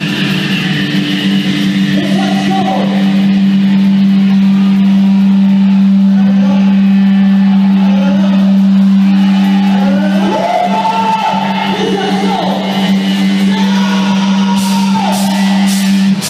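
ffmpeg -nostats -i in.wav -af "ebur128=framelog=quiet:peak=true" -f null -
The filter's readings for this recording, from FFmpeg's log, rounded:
Integrated loudness:
  I:          -9.9 LUFS
  Threshold: -19.9 LUFS
Loudness range:
  LRA:         3.4 LU
  Threshold: -29.7 LUFS
  LRA low:   -11.7 LUFS
  LRA high:   -8.3 LUFS
True peak:
  Peak:       -2.8 dBFS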